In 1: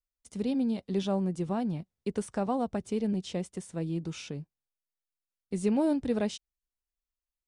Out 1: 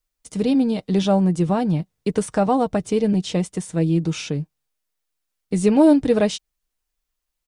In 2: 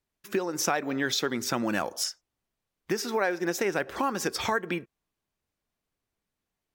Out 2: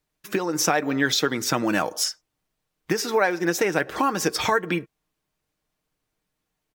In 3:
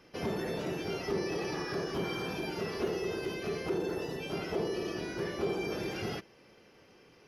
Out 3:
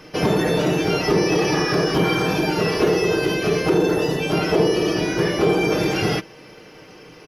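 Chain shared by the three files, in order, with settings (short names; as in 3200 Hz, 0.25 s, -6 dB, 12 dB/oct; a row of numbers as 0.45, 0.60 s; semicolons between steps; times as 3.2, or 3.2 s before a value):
comb 6.5 ms, depth 39%; normalise peaks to -6 dBFS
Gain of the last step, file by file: +11.0, +5.0, +15.5 dB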